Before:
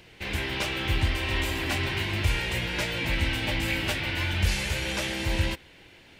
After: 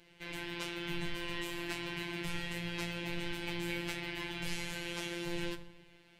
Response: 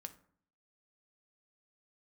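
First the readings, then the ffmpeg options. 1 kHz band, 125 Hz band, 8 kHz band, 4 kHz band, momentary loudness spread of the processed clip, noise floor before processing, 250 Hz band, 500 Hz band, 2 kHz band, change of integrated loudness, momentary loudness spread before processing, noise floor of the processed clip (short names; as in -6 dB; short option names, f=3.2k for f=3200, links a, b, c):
-10.5 dB, -15.5 dB, -10.5 dB, -11.0 dB, 3 LU, -53 dBFS, -6.5 dB, -8.5 dB, -11.0 dB, -11.5 dB, 2 LU, -62 dBFS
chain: -filter_complex "[1:a]atrim=start_sample=2205,asetrate=27783,aresample=44100[a];[0:a][a]afir=irnorm=-1:irlink=0,afftfilt=real='hypot(re,im)*cos(PI*b)':imag='0':win_size=1024:overlap=0.75,volume=-4.5dB"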